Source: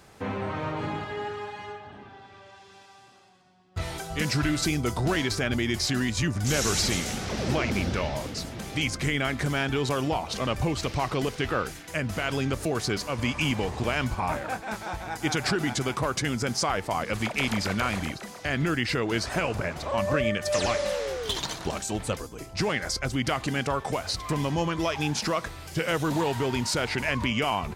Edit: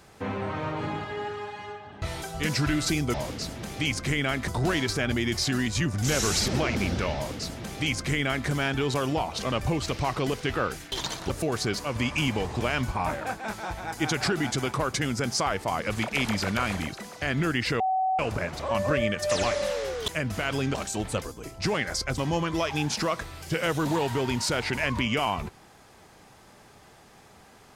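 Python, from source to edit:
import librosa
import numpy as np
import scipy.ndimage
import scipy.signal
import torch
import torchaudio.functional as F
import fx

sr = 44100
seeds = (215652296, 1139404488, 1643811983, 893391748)

y = fx.edit(x, sr, fx.cut(start_s=2.02, length_s=1.76),
    fx.cut(start_s=6.9, length_s=0.53),
    fx.duplicate(start_s=8.1, length_s=1.34, to_s=4.9),
    fx.swap(start_s=11.87, length_s=0.66, other_s=21.31, other_length_s=0.38),
    fx.bleep(start_s=19.03, length_s=0.39, hz=755.0, db=-22.0),
    fx.cut(start_s=23.13, length_s=1.3), tone=tone)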